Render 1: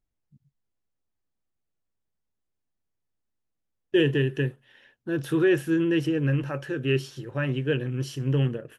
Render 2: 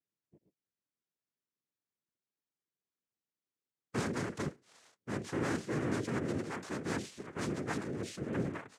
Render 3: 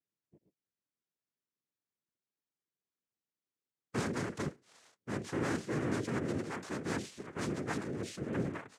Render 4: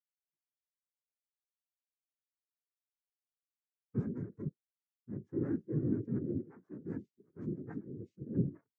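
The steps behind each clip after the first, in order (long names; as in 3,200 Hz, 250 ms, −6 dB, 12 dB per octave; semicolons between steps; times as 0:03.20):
tube saturation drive 26 dB, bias 0.45; cochlear-implant simulation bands 3; level −5.5 dB
no processing that can be heard
low-shelf EQ 78 Hz +6 dB; every bin expanded away from the loudest bin 2.5 to 1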